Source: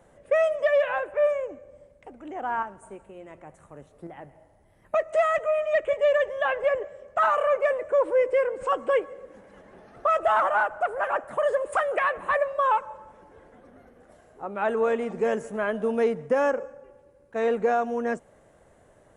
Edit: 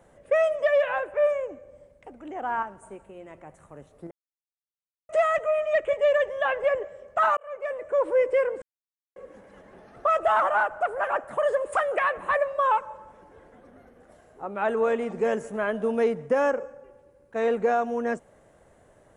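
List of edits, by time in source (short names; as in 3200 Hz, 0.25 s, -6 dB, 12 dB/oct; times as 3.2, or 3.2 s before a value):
4.11–5.09 mute
7.37–8.11 fade in
8.62–9.16 mute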